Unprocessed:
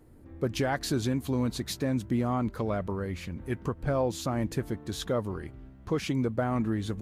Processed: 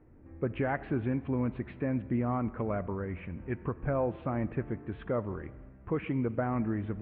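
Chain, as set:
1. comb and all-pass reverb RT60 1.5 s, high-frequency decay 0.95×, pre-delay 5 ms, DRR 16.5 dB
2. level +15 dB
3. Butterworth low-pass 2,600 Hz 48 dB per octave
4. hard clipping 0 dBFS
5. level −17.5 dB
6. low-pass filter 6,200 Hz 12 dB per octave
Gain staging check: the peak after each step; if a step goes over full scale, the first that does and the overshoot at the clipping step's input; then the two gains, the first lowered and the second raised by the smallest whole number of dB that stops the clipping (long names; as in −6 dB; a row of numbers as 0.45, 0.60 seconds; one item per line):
−17.0, −2.0, −2.0, −2.0, −19.5, −19.5 dBFS
no step passes full scale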